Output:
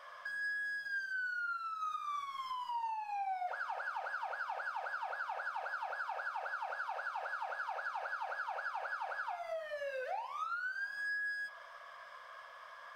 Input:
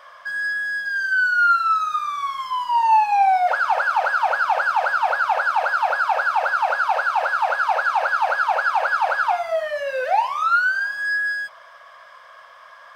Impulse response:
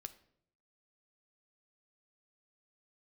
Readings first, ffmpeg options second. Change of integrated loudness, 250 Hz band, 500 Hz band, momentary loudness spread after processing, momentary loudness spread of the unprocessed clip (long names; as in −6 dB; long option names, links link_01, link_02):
−19.5 dB, can't be measured, −19.0 dB, 5 LU, 8 LU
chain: -filter_complex "[0:a]acompressor=threshold=-32dB:ratio=5[link_01];[1:a]atrim=start_sample=2205,asetrate=42336,aresample=44100[link_02];[link_01][link_02]afir=irnorm=-1:irlink=0,volume=-2.5dB"